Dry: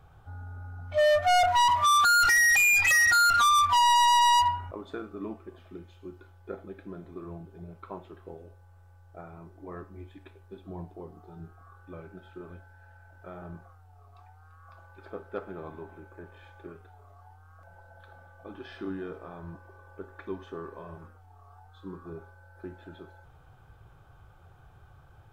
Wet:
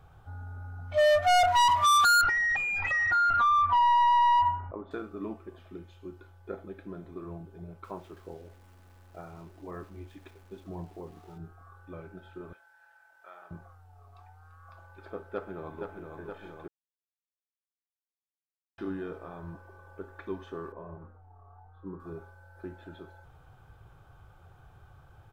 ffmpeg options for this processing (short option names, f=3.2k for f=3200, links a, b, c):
-filter_complex "[0:a]asettb=1/sr,asplit=3[a][b][c];[a]atrim=end=2.214[d];[b]atrim=start=2.21:end=4.91,asetpts=PTS-STARTPTS,afade=t=in:d=0.004:c=qsin,afade=t=out:st=2.696:d=0.004:c=qsin,lowpass=1.5k[e];[c]atrim=start=4.906[f];[d][e]acrossfade=d=0.004:c1=hsin:c2=qsin[g];[g][f]acrossfade=d=0.004:c1=qsin:c2=hsin,asettb=1/sr,asplit=3[h][i][j];[h]atrim=end=7.844[k];[i]atrim=start=7.84:end=11.38,asetpts=PTS-STARTPTS,afade=t=in:d=0.004:c=qsin,afade=t=out:st=3.536:d=0.004:c=qsin,aeval=exprs='val(0)*gte(abs(val(0)),0.0015)':c=same[l];[j]atrim=start=11.376[m];[k][l]acrossfade=d=0.004:c1=hsin:c2=qsin[n];[n][m]acrossfade=d=0.004:c1=qsin:c2=hsin,asettb=1/sr,asplit=3[o][p][q];[o]atrim=end=12.534[r];[p]atrim=start=12.53:end=13.51,asetpts=PTS-STARTPTS,afade=t=in:d=0.004:c=qsin,afade=t=out:st=0.976:d=0.004:c=qsin,highpass=1k[s];[q]atrim=start=13.506[t];[r][s]acrossfade=d=0.004:c1=hsin:c2=qsin[u];[u][t]acrossfade=d=0.004:c1=qsin:c2=hsin,asplit=2[v][w];[w]afade=t=in:st=15.3:d=0.01,afade=t=out:st=16.06:d=0.01,aecho=0:1:470|940|1410|1880|2350|2820|3290|3760|4230|4700|5170|5640:0.562341|0.393639|0.275547|0.192883|0.135018|0.0945127|0.0661589|0.0463112|0.0324179|0.0226925|0.0158848|0.0111193[x];[v][x]amix=inputs=2:normalize=0,asettb=1/sr,asplit=3[y][z][aa];[y]atrim=end=20.724[ab];[z]atrim=start=20.72:end=22,asetpts=PTS-STARTPTS,afade=t=in:d=0.004:c=qsin,afade=t=out:st=1.276:d=0.004:c=qsin,lowpass=1.1k[ac];[aa]atrim=start=21.996[ad];[ab][ac]acrossfade=d=0.004:c1=hsin:c2=qsin[ae];[ae][ad]acrossfade=d=0.004:c1=qsin:c2=hsin,asplit=3[af][ag][ah];[af]atrim=end=16.68,asetpts=PTS-STARTPTS,afade=t=out:st=16.676:d=0.004:c=hsin[ai];[ag]atrim=start=16.68:end=18.78,asetpts=PTS-STARTPTS,volume=0[aj];[ah]atrim=start=18.78,asetpts=PTS-STARTPTS,afade=t=in:d=0.004:c=hsin[ak];[ai][aj][ak]concat=n=3:v=0:a=1"